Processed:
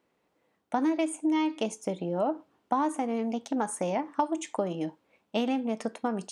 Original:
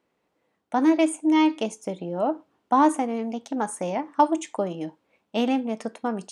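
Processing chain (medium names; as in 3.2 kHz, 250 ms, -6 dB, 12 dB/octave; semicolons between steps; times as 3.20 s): compression 5:1, threshold -24 dBFS, peak gain reduction 10.5 dB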